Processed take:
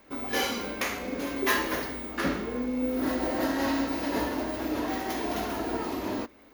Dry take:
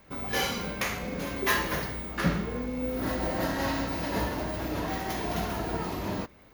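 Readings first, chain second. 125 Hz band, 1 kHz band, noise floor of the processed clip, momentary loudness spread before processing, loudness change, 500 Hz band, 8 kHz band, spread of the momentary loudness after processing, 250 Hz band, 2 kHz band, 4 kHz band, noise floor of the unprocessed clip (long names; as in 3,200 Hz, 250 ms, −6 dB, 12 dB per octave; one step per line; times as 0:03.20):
−9.0 dB, +0.5 dB, −54 dBFS, 6 LU, +1.0 dB, +1.5 dB, 0.0 dB, 5 LU, +3.0 dB, 0.0 dB, 0.0 dB, −54 dBFS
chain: low shelf with overshoot 210 Hz −6.5 dB, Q 3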